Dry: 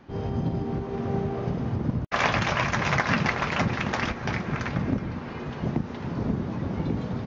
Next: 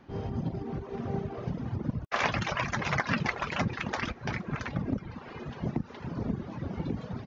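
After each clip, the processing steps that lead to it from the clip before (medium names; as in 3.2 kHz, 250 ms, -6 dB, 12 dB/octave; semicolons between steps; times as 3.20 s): reverb removal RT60 1.1 s; trim -3.5 dB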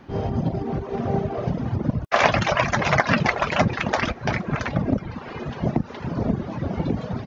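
dynamic bell 640 Hz, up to +7 dB, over -50 dBFS, Q 2.5; trim +8.5 dB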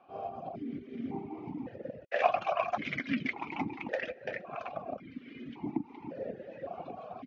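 stepped vowel filter 1.8 Hz; trim -1 dB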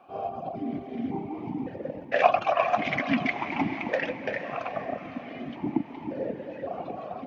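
echo that smears into a reverb 478 ms, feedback 43%, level -10 dB; trim +6.5 dB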